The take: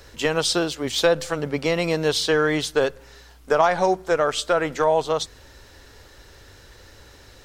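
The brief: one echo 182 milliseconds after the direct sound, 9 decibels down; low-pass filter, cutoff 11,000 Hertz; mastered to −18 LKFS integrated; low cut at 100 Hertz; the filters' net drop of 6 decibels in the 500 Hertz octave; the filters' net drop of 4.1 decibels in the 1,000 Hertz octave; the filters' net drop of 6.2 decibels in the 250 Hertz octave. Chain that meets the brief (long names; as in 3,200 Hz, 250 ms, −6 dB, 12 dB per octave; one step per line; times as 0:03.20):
high-pass filter 100 Hz
low-pass filter 11,000 Hz
parametric band 250 Hz −7 dB
parametric band 500 Hz −4.5 dB
parametric band 1,000 Hz −3.5 dB
single-tap delay 182 ms −9 dB
level +7 dB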